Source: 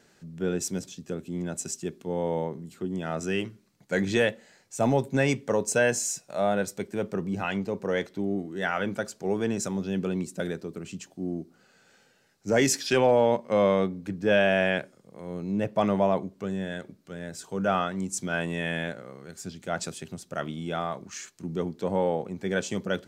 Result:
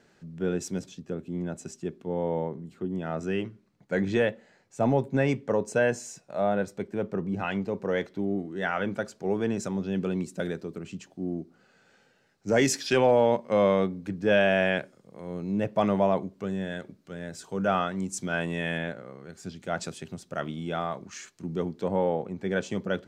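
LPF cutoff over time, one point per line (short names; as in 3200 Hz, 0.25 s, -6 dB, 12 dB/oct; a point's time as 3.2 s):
LPF 6 dB/oct
3300 Hz
from 1 s 1700 Hz
from 7.39 s 3200 Hz
from 9.95 s 5500 Hz
from 10.78 s 3300 Hz
from 12.48 s 6600 Hz
from 18.78 s 2900 Hz
from 19.43 s 5100 Hz
from 21.88 s 2700 Hz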